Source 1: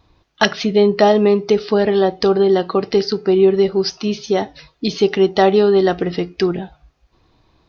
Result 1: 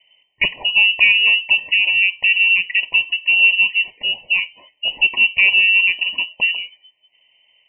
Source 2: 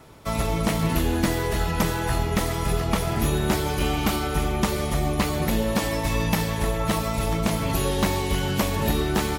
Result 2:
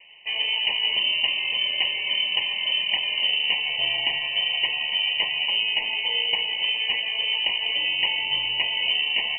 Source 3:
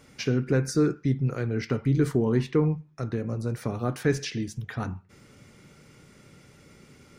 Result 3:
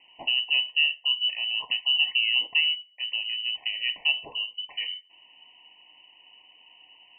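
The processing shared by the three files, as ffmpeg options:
ffmpeg -i in.wav -af "aeval=exprs='0.891*(cos(1*acos(clip(val(0)/0.891,-1,1)))-cos(1*PI/2))+0.0251*(cos(2*acos(clip(val(0)/0.891,-1,1)))-cos(2*PI/2))':channel_layout=same,lowpass=frequency=2600:width_type=q:width=0.5098,lowpass=frequency=2600:width_type=q:width=0.6013,lowpass=frequency=2600:width_type=q:width=0.9,lowpass=frequency=2600:width_type=q:width=2.563,afreqshift=-3100,asuperstop=centerf=1400:order=20:qfactor=1.8,volume=-1dB" out.wav

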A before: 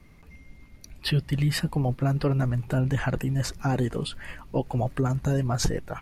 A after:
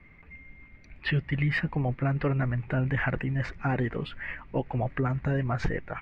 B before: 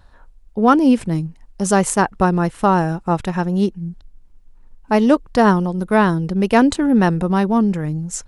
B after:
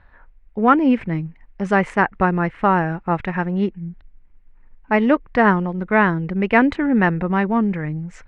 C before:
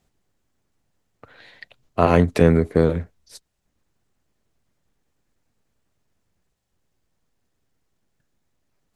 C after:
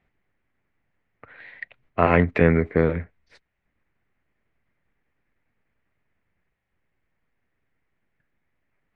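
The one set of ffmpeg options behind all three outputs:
ffmpeg -i in.wav -af "lowpass=frequency=2100:width_type=q:width=3.3,volume=-3dB" out.wav

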